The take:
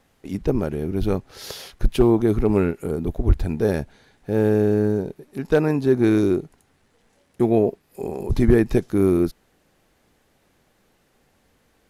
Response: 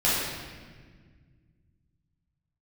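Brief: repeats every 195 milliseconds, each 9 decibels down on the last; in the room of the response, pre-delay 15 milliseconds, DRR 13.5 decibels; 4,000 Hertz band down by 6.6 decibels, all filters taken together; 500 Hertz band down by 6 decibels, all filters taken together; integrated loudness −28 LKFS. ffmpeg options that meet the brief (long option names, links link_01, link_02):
-filter_complex "[0:a]equalizer=frequency=500:width_type=o:gain=-8.5,equalizer=frequency=4000:width_type=o:gain=-8.5,aecho=1:1:195|390|585|780:0.355|0.124|0.0435|0.0152,asplit=2[link_01][link_02];[1:a]atrim=start_sample=2205,adelay=15[link_03];[link_02][link_03]afir=irnorm=-1:irlink=0,volume=-28.5dB[link_04];[link_01][link_04]amix=inputs=2:normalize=0,volume=-4dB"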